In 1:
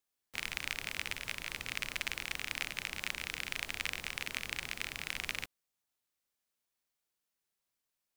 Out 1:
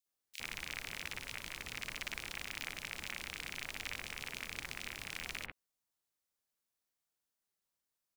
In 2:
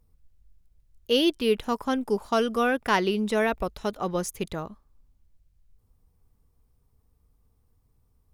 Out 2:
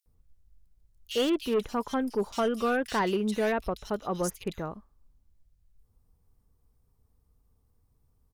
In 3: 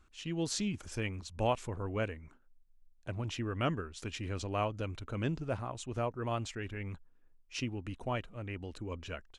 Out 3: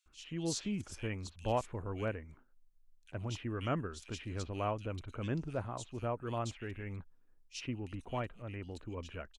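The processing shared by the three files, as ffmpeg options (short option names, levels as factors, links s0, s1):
-filter_complex "[0:a]asoftclip=type=hard:threshold=0.112,acrossover=split=2600[s0][s1];[s0]adelay=60[s2];[s2][s1]amix=inputs=2:normalize=0,volume=0.794"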